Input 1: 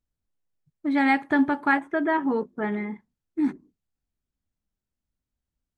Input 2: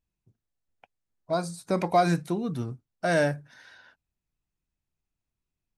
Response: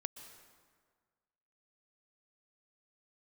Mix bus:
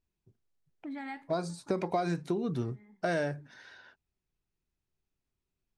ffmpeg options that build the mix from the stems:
-filter_complex "[0:a]acompressor=threshold=-31dB:ratio=4,flanger=delay=9.1:depth=3.7:regen=74:speed=1.4:shape=triangular,adynamicequalizer=threshold=0.00355:dfrequency=3600:dqfactor=0.7:tfrequency=3600:tqfactor=0.7:attack=5:release=100:ratio=0.375:range=2:mode=boostabove:tftype=highshelf,volume=-4.5dB[a];[1:a]lowpass=7k,equalizer=f=390:t=o:w=0.31:g=8,volume=-1dB,asplit=2[b][c];[c]apad=whole_len=254464[d];[a][d]sidechaincompress=threshold=-42dB:ratio=16:attack=38:release=1260[e];[e][b]amix=inputs=2:normalize=0,acompressor=threshold=-27dB:ratio=6"

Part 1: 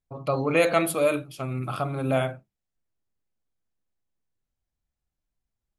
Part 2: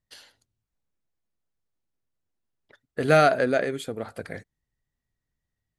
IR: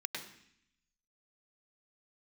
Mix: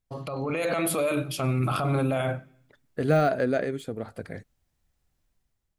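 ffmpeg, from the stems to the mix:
-filter_complex "[0:a]acompressor=threshold=-25dB:ratio=6,alimiter=level_in=4.5dB:limit=-24dB:level=0:latency=1:release=21,volume=-4.5dB,volume=1.5dB,asplit=2[a][b];[b]volume=-20dB[c];[1:a]deesser=0.8,lowshelf=f=430:g=8,volume=-14dB[d];[2:a]atrim=start_sample=2205[e];[c][e]afir=irnorm=-1:irlink=0[f];[a][d][f]amix=inputs=3:normalize=0,dynaudnorm=f=200:g=5:m=8.5dB"

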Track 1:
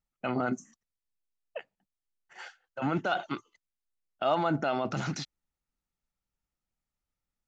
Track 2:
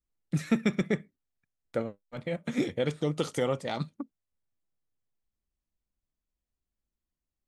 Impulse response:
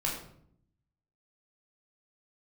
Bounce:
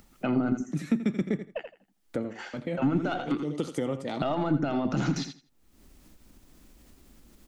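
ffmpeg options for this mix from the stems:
-filter_complex "[0:a]acontrast=20,aeval=exprs='0.299*(cos(1*acos(clip(val(0)/0.299,-1,1)))-cos(1*PI/2))+0.0168*(cos(4*acos(clip(val(0)/0.299,-1,1)))-cos(4*PI/2))':c=same,volume=-2dB,asplit=3[a][b][c];[b]volume=-9.5dB[d];[1:a]agate=range=-35dB:threshold=-47dB:ratio=16:detection=peak,acompressor=mode=upward:threshold=-33dB:ratio=2.5,adelay=400,volume=-3dB,asplit=2[e][f];[f]volume=-13dB[g];[c]apad=whole_len=347430[h];[e][h]sidechaincompress=threshold=-37dB:ratio=8:attack=16:release=285[i];[d][g]amix=inputs=2:normalize=0,aecho=0:1:82|164|246:1|0.17|0.0289[j];[a][i][j]amix=inputs=3:normalize=0,acompressor=mode=upward:threshold=-39dB:ratio=2.5,equalizer=f=280:w=1.3:g=10,acrossover=split=190[k][l];[l]acompressor=threshold=-27dB:ratio=6[m];[k][m]amix=inputs=2:normalize=0"

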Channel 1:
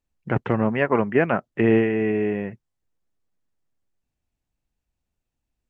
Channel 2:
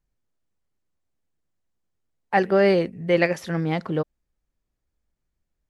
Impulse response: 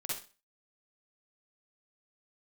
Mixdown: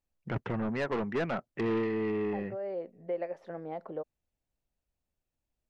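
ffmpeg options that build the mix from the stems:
-filter_complex "[0:a]asoftclip=type=tanh:threshold=-20dB,volume=-6dB,asplit=2[a][b];[1:a]acompressor=threshold=-24dB:ratio=5,bandpass=f=620:t=q:w=2.2:csg=0,volume=-3dB[c];[b]apad=whole_len=251271[d];[c][d]sidechaincompress=threshold=-38dB:ratio=8:attack=9.7:release=544[e];[a][e]amix=inputs=2:normalize=0"

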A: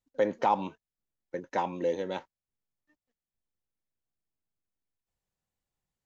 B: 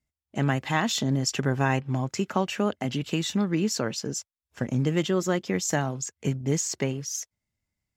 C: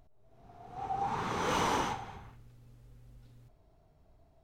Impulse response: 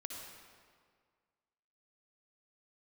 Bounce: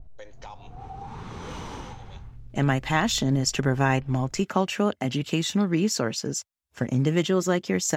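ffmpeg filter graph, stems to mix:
-filter_complex "[0:a]agate=range=-33dB:threshold=-50dB:ratio=3:detection=peak,highpass=390,highshelf=f=2k:g=10.5,volume=-14.5dB[a];[1:a]adelay=2200,volume=2dB[b];[2:a]aemphasis=mode=reproduction:type=riaa,adynamicequalizer=threshold=0.00355:dfrequency=2300:dqfactor=0.7:tfrequency=2300:tqfactor=0.7:attack=5:release=100:ratio=0.375:range=3:mode=boostabove:tftype=highshelf,volume=1dB[c];[a][c]amix=inputs=2:normalize=0,highshelf=f=3.9k:g=11,acompressor=threshold=-40dB:ratio=2.5,volume=0dB[d];[b][d]amix=inputs=2:normalize=0"

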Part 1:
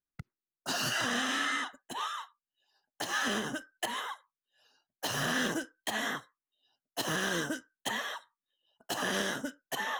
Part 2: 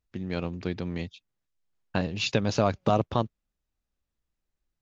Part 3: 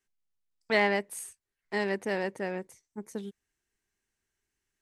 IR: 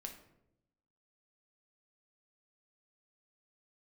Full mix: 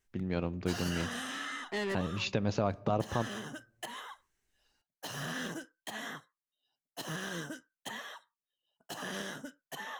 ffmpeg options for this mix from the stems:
-filter_complex "[0:a]equalizer=f=160:t=o:w=0.4:g=7.5,volume=-8dB[a];[1:a]equalizer=f=5.6k:w=0.5:g=-6.5,volume=-3dB,asplit=3[b][c][d];[c]volume=-11.5dB[e];[2:a]asoftclip=type=tanh:threshold=-32dB,volume=1.5dB[f];[d]apad=whole_len=212405[g];[f][g]sidechaincompress=threshold=-48dB:ratio=8:attack=5.7:release=447[h];[3:a]atrim=start_sample=2205[i];[e][i]afir=irnorm=-1:irlink=0[j];[a][b][h][j]amix=inputs=4:normalize=0,alimiter=limit=-17.5dB:level=0:latency=1:release=226"

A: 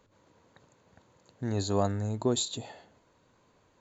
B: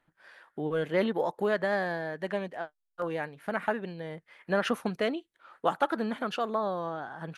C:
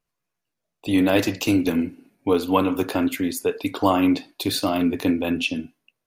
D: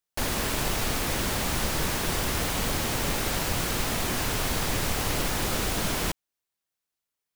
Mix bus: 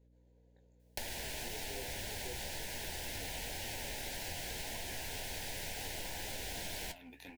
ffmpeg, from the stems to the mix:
-filter_complex "[0:a]equalizer=f=470:t=o:w=0.75:g=12,flanger=delay=16.5:depth=5.8:speed=0.63,volume=-10.5dB[a];[2:a]aeval=exprs='clip(val(0),-1,0.126)':c=same,lowshelf=f=650:t=q:w=1.5:g=-13.5,adelay=2200,volume=-14dB[b];[3:a]acrossover=split=95|510|5300[c][d][e][f];[c]acompressor=threshold=-40dB:ratio=4[g];[d]acompressor=threshold=-51dB:ratio=4[h];[e]acompressor=threshold=-36dB:ratio=4[i];[f]acompressor=threshold=-40dB:ratio=4[j];[g][h][i][j]amix=inputs=4:normalize=0,acontrast=35,adelay=800,volume=2dB[k];[a][b][k]amix=inputs=3:normalize=0,flanger=delay=8.5:depth=7.7:regen=56:speed=1.9:shape=triangular,acompressor=threshold=-39dB:ratio=5,volume=0dB,aeval=exprs='val(0)+0.000562*(sin(2*PI*60*n/s)+sin(2*PI*2*60*n/s)/2+sin(2*PI*3*60*n/s)/3+sin(2*PI*4*60*n/s)/4+sin(2*PI*5*60*n/s)/5)':c=same,asuperstop=centerf=1200:order=4:qfactor=1.7"

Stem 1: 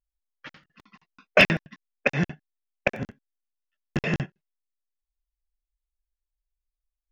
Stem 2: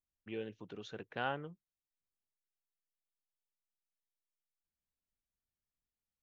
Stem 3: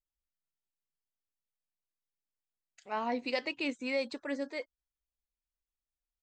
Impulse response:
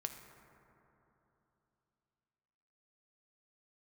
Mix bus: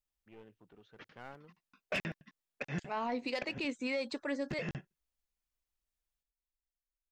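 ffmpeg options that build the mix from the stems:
-filter_complex "[0:a]asoftclip=type=tanh:threshold=-9dB,adelay=550,volume=-12dB[a];[1:a]lowpass=1.6k,crystalizer=i=4.5:c=0,aeval=exprs='clip(val(0),-1,0.00596)':c=same,volume=-12dB[b];[2:a]asoftclip=type=tanh:threshold=-22.5dB,volume=2dB[c];[a][b][c]amix=inputs=3:normalize=0,alimiter=level_in=3.5dB:limit=-24dB:level=0:latency=1:release=139,volume=-3.5dB"

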